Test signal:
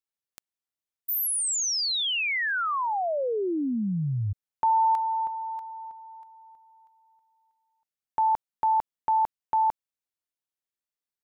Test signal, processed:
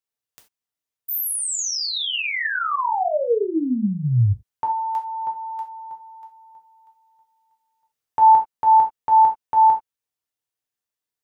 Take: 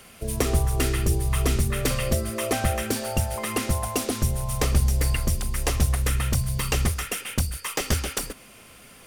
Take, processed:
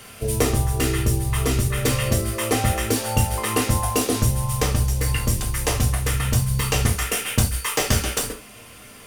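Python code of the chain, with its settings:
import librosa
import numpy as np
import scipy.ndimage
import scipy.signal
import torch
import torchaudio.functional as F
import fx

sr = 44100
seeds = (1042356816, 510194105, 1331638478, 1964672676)

y = fx.rider(x, sr, range_db=4, speed_s=0.5)
y = fx.rev_gated(y, sr, seeds[0], gate_ms=110, shape='falling', drr_db=1.0)
y = y * 10.0 ** (1.5 / 20.0)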